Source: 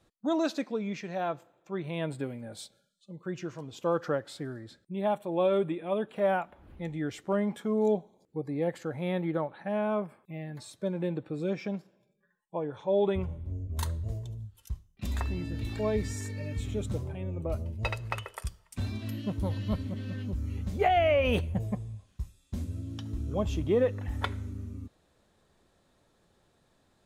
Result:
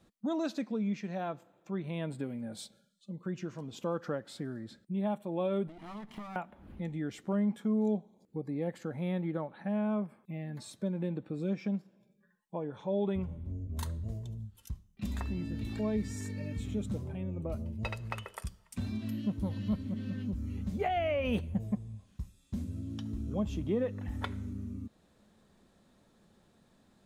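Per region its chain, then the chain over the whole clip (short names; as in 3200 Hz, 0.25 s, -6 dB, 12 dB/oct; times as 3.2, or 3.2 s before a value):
5.67–6.36 minimum comb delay 0.98 ms + compressor 12:1, threshold -41 dBFS
whole clip: bell 210 Hz +10 dB 0.61 oct; compressor 1.5:1, threshold -42 dBFS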